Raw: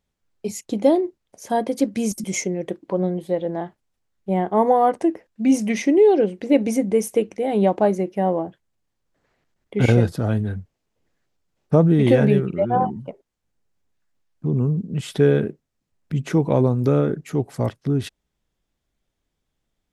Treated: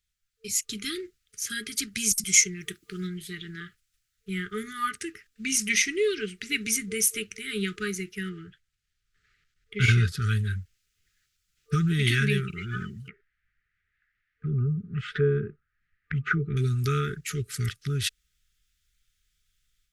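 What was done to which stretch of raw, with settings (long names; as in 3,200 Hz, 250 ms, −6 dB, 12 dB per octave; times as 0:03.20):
0:02.59–0:03.06: high-shelf EQ 9,000 Hz → 5,900 Hz +10 dB
0:08.29–0:10.22: low-pass filter 3,200 Hz 6 dB per octave
0:13.08–0:16.57: envelope-controlled low-pass 710–1,900 Hz down, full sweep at −13.5 dBFS
whole clip: brick-wall band-stop 450–1,200 Hz; guitar amp tone stack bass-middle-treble 10-0-10; automatic gain control gain up to 8 dB; level +2 dB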